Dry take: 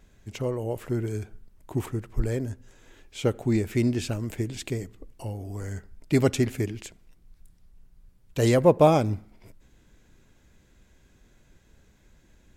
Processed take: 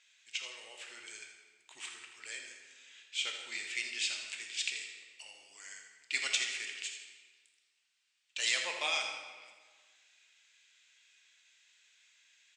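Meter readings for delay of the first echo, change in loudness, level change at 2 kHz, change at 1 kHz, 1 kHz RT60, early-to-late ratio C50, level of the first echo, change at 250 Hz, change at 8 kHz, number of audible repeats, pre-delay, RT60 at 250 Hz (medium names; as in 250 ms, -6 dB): 82 ms, -9.5 dB, +3.0 dB, -15.5 dB, 1.5 s, 4.0 dB, -9.5 dB, -37.0 dB, +1.5 dB, 1, 7 ms, 1.5 s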